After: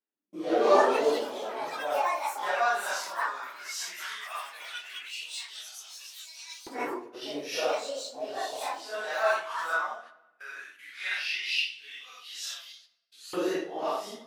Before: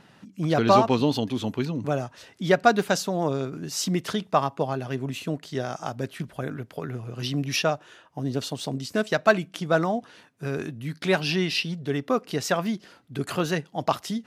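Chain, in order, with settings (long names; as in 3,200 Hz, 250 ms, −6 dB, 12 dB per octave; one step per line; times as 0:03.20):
random phases in long frames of 200 ms
noise gate −36 dBFS, range −37 dB
high-pass filter 200 Hz 12 dB per octave
rectangular room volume 640 cubic metres, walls mixed, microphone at 0.38 metres
delay with pitch and tempo change per echo 314 ms, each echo +7 semitones, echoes 3, each echo −6 dB
auto-filter high-pass saw up 0.15 Hz 310–4,900 Hz
level −7 dB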